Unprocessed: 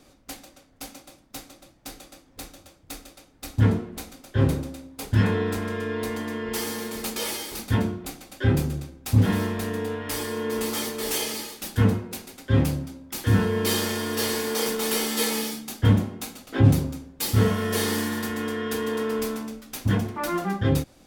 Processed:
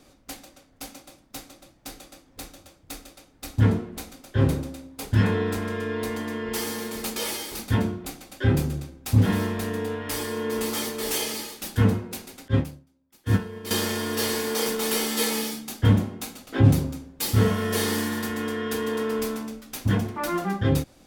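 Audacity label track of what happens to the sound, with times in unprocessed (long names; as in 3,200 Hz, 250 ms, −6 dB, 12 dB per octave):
12.480000	13.710000	expander for the loud parts 2.5 to 1, over −33 dBFS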